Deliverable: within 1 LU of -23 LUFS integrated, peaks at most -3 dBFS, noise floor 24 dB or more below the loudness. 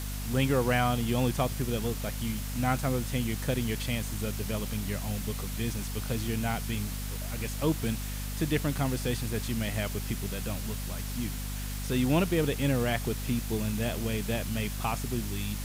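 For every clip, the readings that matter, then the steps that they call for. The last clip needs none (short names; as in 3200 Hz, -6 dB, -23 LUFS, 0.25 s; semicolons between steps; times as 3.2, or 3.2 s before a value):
hum 50 Hz; harmonics up to 250 Hz; hum level -33 dBFS; noise floor -35 dBFS; noise floor target -55 dBFS; loudness -31.0 LUFS; peak -13.0 dBFS; loudness target -23.0 LUFS
-> de-hum 50 Hz, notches 5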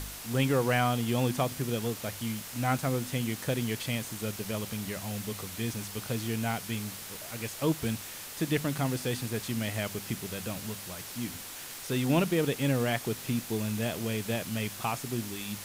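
hum none; noise floor -43 dBFS; noise floor target -56 dBFS
-> denoiser 13 dB, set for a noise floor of -43 dBFS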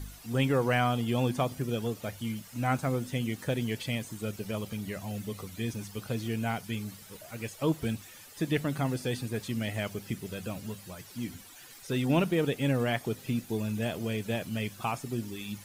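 noise floor -50 dBFS; noise floor target -56 dBFS
-> denoiser 6 dB, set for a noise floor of -50 dBFS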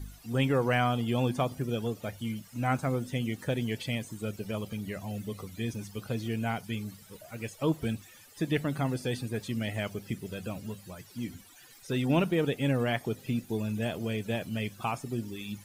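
noise floor -54 dBFS; noise floor target -57 dBFS
-> denoiser 6 dB, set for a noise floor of -54 dBFS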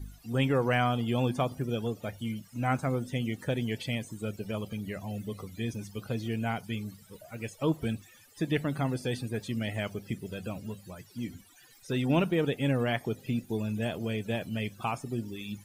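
noise floor -57 dBFS; loudness -32.5 LUFS; peak -14.0 dBFS; loudness target -23.0 LUFS
-> gain +9.5 dB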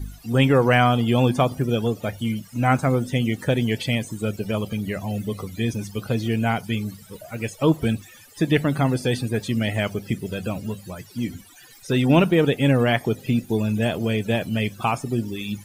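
loudness -23.0 LUFS; peak -4.5 dBFS; noise floor -48 dBFS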